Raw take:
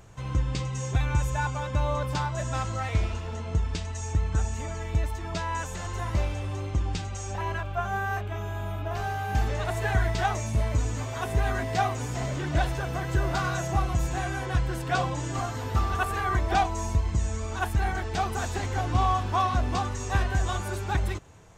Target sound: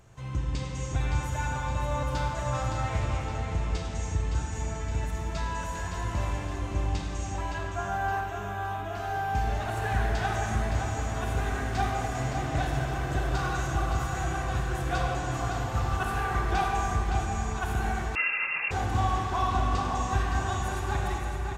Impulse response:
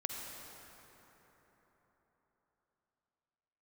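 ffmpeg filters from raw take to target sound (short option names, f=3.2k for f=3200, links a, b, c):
-filter_complex "[0:a]aecho=1:1:566|1132|1698|2264|2830:0.447|0.205|0.0945|0.0435|0.02[a];[1:a]atrim=start_sample=2205,asetrate=66150,aresample=44100[b];[a][b]afir=irnorm=-1:irlink=0,asettb=1/sr,asplit=3[c][d][e];[c]atrim=end=18.154[f];[d]atrim=start=18.15:end=18.71,asetpts=PTS-STARTPTS,afade=t=in:d=0.004:c=qsin,afade=t=out:st=0.556:d=0.004:c=qsin,lowpass=f=2.4k:t=q:w=0.5098,lowpass=f=2.4k:t=q:w=0.6013,lowpass=f=2.4k:t=q:w=0.9,lowpass=f=2.4k:t=q:w=2.563,afreqshift=-2800[g];[e]atrim=start=18.706[h];[f][g]acrossfade=d=0.004:c1=hsin:c2=qsin[i];[i][h]acrossfade=d=0.004:c1=qsin:c2=hsin"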